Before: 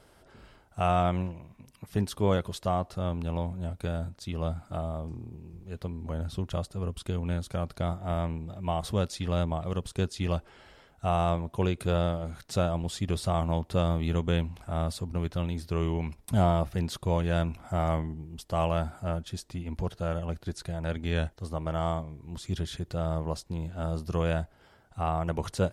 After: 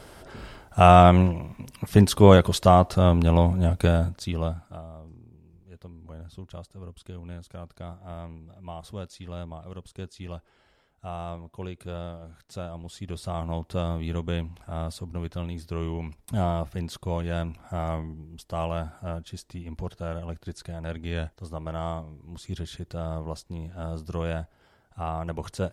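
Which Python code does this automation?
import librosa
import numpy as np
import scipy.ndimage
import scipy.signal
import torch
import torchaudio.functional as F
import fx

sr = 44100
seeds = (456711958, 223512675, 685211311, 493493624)

y = fx.gain(x, sr, db=fx.line((3.85, 12.0), (4.45, 3.5), (4.85, -9.0), (12.7, -9.0), (13.58, -2.0)))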